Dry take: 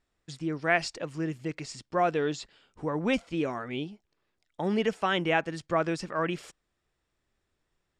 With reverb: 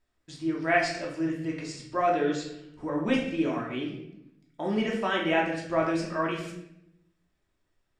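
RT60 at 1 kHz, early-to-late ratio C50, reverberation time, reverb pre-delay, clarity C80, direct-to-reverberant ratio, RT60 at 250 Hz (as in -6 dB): 0.70 s, 4.5 dB, 0.75 s, 3 ms, 7.5 dB, -3.0 dB, 1.2 s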